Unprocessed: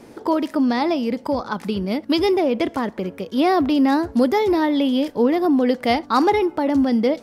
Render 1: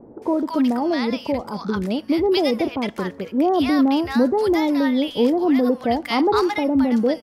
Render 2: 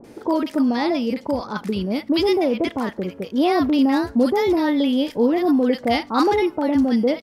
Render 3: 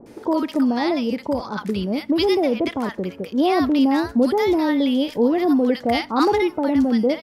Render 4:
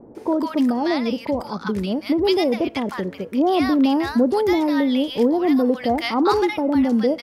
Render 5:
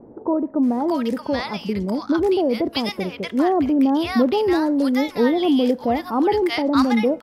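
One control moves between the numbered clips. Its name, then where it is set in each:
bands offset in time, time: 220 ms, 40 ms, 60 ms, 150 ms, 630 ms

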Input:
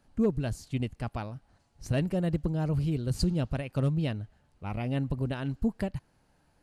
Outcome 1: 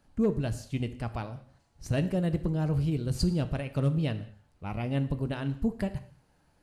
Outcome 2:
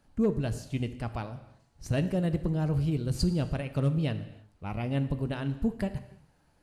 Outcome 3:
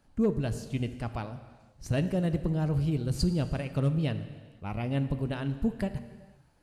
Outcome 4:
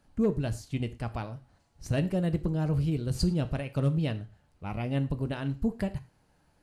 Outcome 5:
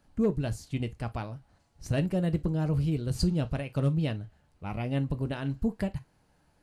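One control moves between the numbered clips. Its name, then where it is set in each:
gated-style reverb, gate: 240 ms, 350 ms, 530 ms, 140 ms, 80 ms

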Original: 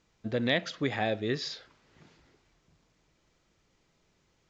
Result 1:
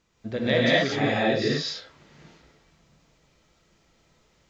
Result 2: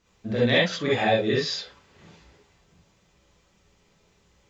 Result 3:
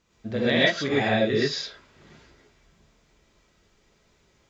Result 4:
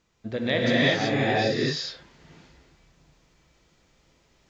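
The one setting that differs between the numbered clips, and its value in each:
gated-style reverb, gate: 270 ms, 90 ms, 150 ms, 400 ms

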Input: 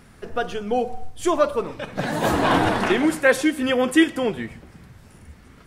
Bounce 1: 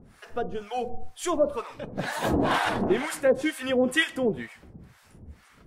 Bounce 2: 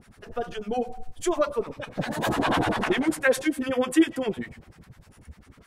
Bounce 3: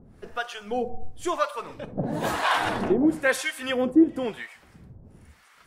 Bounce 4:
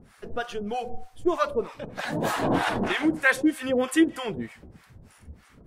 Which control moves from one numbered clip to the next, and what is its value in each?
harmonic tremolo, rate: 2.1 Hz, 10 Hz, 1 Hz, 3.2 Hz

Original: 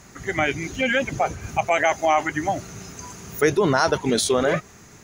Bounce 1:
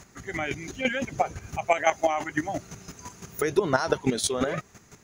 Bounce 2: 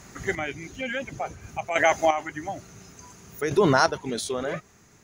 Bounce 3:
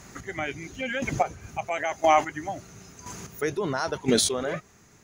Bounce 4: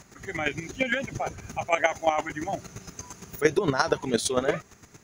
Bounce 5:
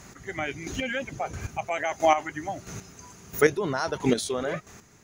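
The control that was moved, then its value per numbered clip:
square tremolo, rate: 5.9 Hz, 0.57 Hz, 0.98 Hz, 8.7 Hz, 1.5 Hz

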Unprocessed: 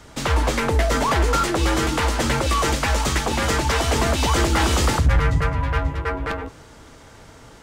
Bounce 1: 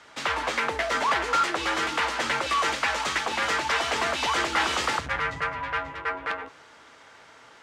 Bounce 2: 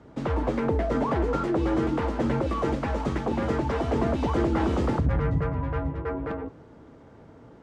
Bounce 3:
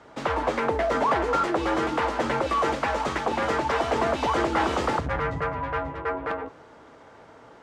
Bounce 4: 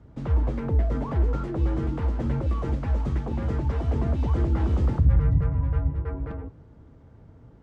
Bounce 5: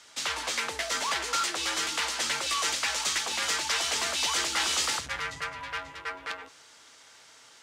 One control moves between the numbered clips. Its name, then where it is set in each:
band-pass filter, frequency: 1.9 kHz, 260 Hz, 700 Hz, 100 Hz, 5 kHz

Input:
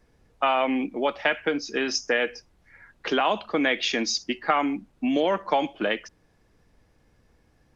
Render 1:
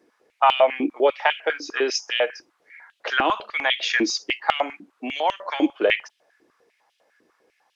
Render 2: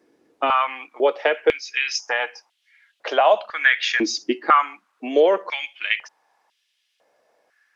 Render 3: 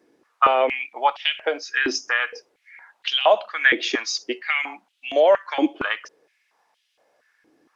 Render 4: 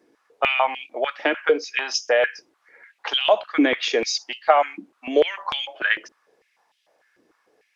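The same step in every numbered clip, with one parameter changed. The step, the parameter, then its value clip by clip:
step-sequenced high-pass, rate: 10 Hz, 2 Hz, 4.3 Hz, 6.7 Hz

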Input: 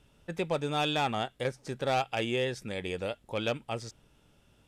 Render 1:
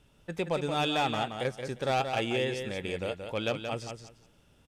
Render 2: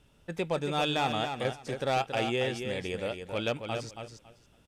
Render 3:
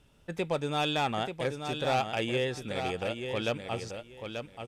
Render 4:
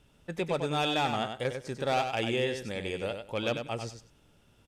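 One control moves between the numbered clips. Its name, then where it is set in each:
feedback delay, time: 177 ms, 277 ms, 885 ms, 96 ms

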